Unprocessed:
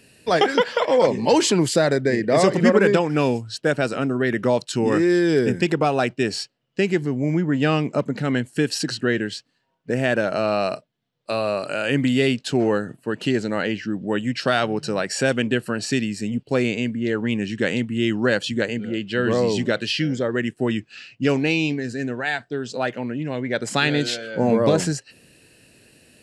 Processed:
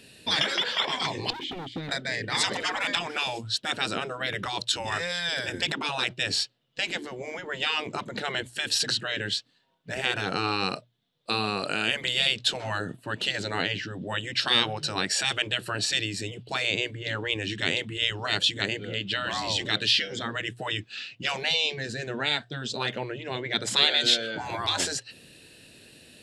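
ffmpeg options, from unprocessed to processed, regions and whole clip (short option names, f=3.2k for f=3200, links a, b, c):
-filter_complex "[0:a]asettb=1/sr,asplit=3[a][b][c];[a]atrim=end=1.304[d];[b]atrim=start=1.3:end=1.89,asetpts=PTS-STARTPTS,afade=t=in:d=0.004:c=qsin,afade=t=out:st=0.586:d=0.004:c=qsin,asplit=3[e][f][g];[e]bandpass=f=270:t=q:w=8,volume=0dB[h];[f]bandpass=f=2.29k:t=q:w=8,volume=-6dB[i];[g]bandpass=f=3.01k:t=q:w=8,volume=-9dB[j];[h][i][j]amix=inputs=3:normalize=0,bass=f=250:g=13,treble=f=4k:g=-9,asoftclip=type=hard:threshold=-28.5dB[k];[c]atrim=start=1.886[l];[d][k]acrossfade=d=0.004:c1=hsin:c2=qsin[m];[m][l]acrossfade=d=0.004:c1=qsin:c2=hsin,afftfilt=real='re*lt(hypot(re,im),0.251)':imag='im*lt(hypot(re,im),0.251)':win_size=1024:overlap=0.75,equalizer=f=3.6k:t=o:w=0.39:g=11,bandreject=f=60:t=h:w=6,bandreject=f=120:t=h:w=6"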